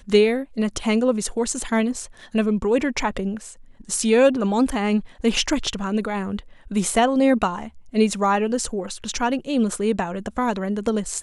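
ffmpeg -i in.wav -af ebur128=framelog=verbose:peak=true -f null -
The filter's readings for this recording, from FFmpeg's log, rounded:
Integrated loudness:
  I:         -22.1 LUFS
  Threshold: -32.3 LUFS
Loudness range:
  LRA:         1.9 LU
  Threshold: -42.2 LUFS
  LRA low:   -23.4 LUFS
  LRA high:  -21.5 LUFS
True peak:
  Peak:       -4.9 dBFS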